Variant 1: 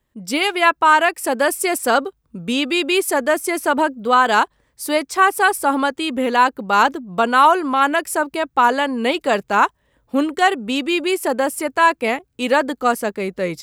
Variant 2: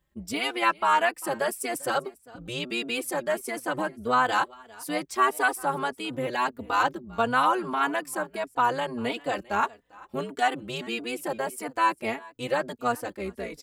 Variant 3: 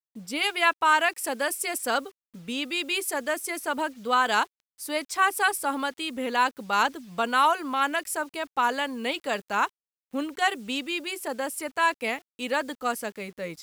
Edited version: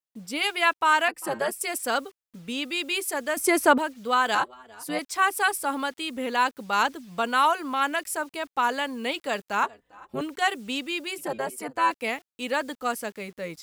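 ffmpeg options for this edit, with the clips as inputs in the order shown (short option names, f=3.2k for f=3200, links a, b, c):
-filter_complex "[1:a]asplit=4[a][b][c][d];[2:a]asplit=6[e][f][g][h][i][j];[e]atrim=end=1.082[k];[a]atrim=start=1.078:end=1.612[l];[f]atrim=start=1.608:end=3.372[m];[0:a]atrim=start=3.368:end=3.782[n];[g]atrim=start=3.778:end=4.352[o];[b]atrim=start=4.348:end=4.992[p];[h]atrim=start=4.988:end=9.632[q];[c]atrim=start=9.628:end=10.212[r];[i]atrim=start=10.208:end=11.182[s];[d]atrim=start=11.178:end=11.912[t];[j]atrim=start=11.908[u];[k][l]acrossfade=d=0.004:c1=hsin:c2=hsin[v];[v][m]acrossfade=d=0.004:c1=hsin:c2=hsin[w];[w][n]acrossfade=d=0.004:c1=hsin:c2=hsin[x];[x][o]acrossfade=d=0.004:c1=hsin:c2=hsin[y];[y][p]acrossfade=d=0.004:c1=hsin:c2=hsin[z];[z][q]acrossfade=d=0.004:c1=hsin:c2=hsin[aa];[aa][r]acrossfade=d=0.004:c1=hsin:c2=hsin[ab];[ab][s]acrossfade=d=0.004:c1=hsin:c2=hsin[ac];[ac][t]acrossfade=d=0.004:c1=hsin:c2=hsin[ad];[ad][u]acrossfade=d=0.004:c1=hsin:c2=hsin"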